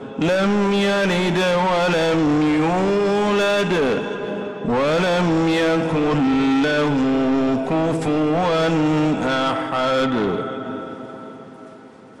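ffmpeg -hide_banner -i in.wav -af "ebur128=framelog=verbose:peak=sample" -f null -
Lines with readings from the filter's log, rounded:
Integrated loudness:
  I:         -19.0 LUFS
  Threshold: -29.5 LUFS
Loudness range:
  LRA:         2.9 LU
  Threshold: -39.2 LUFS
  LRA low:   -21.0 LUFS
  LRA high:  -18.1 LUFS
Sample peak:
  Peak:      -15.0 dBFS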